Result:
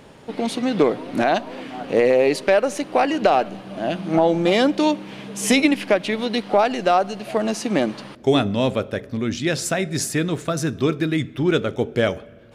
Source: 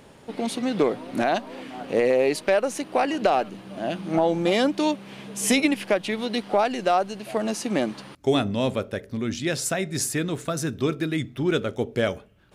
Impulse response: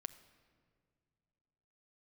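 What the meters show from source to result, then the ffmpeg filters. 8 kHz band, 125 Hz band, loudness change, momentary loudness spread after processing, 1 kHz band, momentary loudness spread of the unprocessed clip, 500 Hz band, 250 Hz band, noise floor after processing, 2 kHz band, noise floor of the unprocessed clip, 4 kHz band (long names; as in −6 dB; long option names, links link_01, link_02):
+1.0 dB, +4.5 dB, +4.0 dB, 9 LU, +4.0 dB, 9 LU, +4.0 dB, +4.0 dB, −44 dBFS, +4.0 dB, −50 dBFS, +3.5 dB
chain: -filter_complex "[0:a]asplit=2[link_01][link_02];[1:a]atrim=start_sample=2205,lowpass=7800[link_03];[link_02][link_03]afir=irnorm=-1:irlink=0,volume=-0.5dB[link_04];[link_01][link_04]amix=inputs=2:normalize=0"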